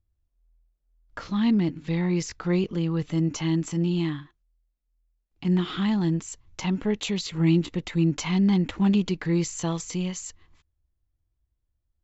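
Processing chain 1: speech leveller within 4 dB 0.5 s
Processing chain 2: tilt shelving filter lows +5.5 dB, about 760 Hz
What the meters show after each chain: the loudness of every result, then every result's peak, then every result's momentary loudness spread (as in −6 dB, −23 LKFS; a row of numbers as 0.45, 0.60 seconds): −26.0, −21.5 LKFS; −11.5, −7.5 dBFS; 5, 9 LU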